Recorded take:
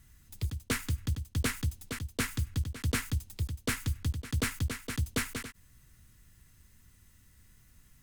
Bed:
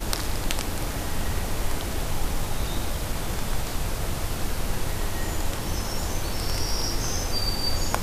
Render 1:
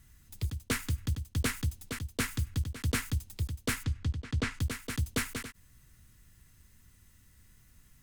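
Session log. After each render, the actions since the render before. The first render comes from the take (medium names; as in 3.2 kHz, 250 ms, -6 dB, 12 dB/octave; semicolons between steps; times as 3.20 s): 3.83–4.60 s: distance through air 97 m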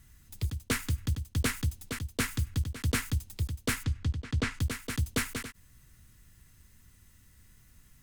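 trim +1.5 dB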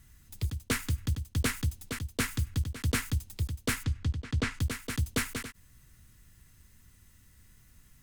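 no audible change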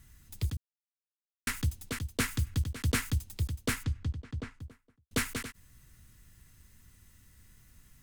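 0.57–1.47 s: mute; 3.46–5.11 s: studio fade out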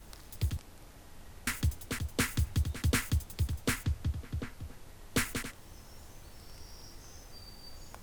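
add bed -24 dB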